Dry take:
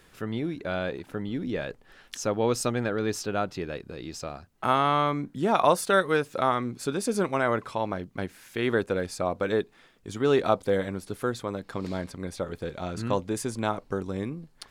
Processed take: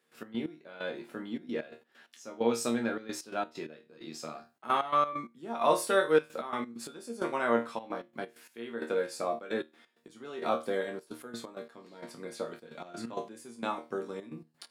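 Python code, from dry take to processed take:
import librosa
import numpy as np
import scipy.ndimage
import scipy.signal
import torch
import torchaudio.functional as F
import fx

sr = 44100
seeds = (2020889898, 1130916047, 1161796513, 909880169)

y = scipy.signal.sosfilt(scipy.signal.butter(4, 180.0, 'highpass', fs=sr, output='sos'), x)
y = fx.notch(y, sr, hz=6100.0, q=21.0)
y = fx.resonator_bank(y, sr, root=39, chord='fifth', decay_s=0.27)
y = fx.step_gate(y, sr, bpm=131, pattern='.x.x...xxxxx.x', floor_db=-12.0, edge_ms=4.5)
y = y * librosa.db_to_amplitude(6.0)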